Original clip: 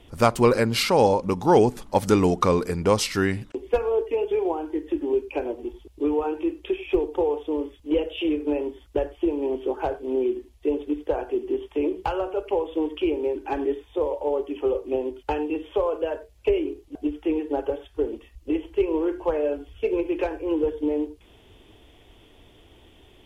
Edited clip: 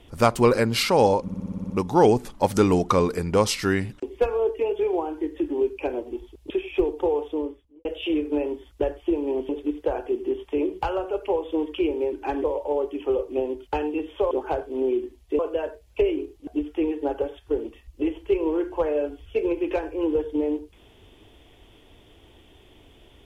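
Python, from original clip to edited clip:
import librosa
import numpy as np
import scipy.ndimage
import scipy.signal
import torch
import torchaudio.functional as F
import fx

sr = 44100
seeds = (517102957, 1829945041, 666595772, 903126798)

y = fx.studio_fade_out(x, sr, start_s=7.42, length_s=0.58)
y = fx.edit(y, sr, fx.stutter(start_s=1.22, slice_s=0.06, count=9),
    fx.cut(start_s=6.02, length_s=0.63),
    fx.move(start_s=9.64, length_s=1.08, to_s=15.87),
    fx.cut(start_s=13.67, length_s=0.33), tone=tone)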